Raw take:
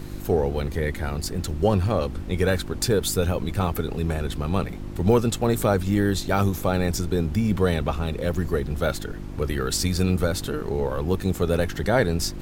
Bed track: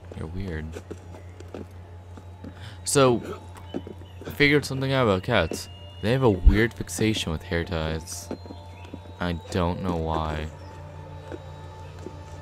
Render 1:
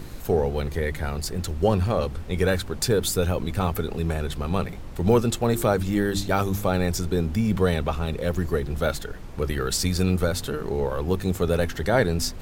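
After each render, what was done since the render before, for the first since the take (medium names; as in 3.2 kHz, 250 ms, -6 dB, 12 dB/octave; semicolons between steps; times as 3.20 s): de-hum 50 Hz, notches 7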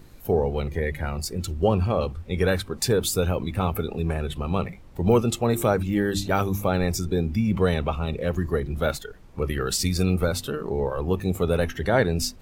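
noise print and reduce 11 dB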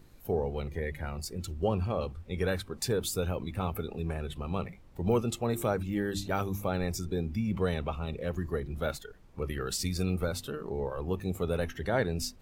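trim -8 dB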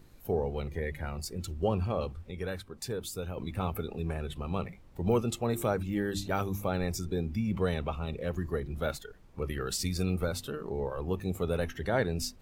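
2.31–3.37 s: gain -6 dB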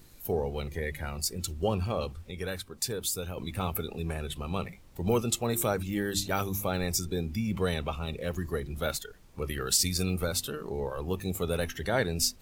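treble shelf 3 kHz +11.5 dB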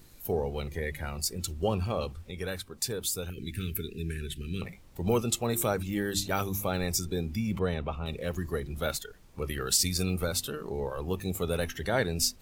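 3.30–4.62 s: elliptic band-stop 400–1600 Hz; 7.59–8.06 s: low-pass 1.6 kHz 6 dB/octave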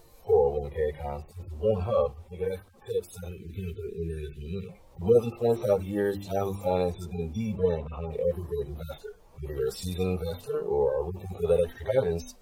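harmonic-percussive separation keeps harmonic; high-order bell 670 Hz +11 dB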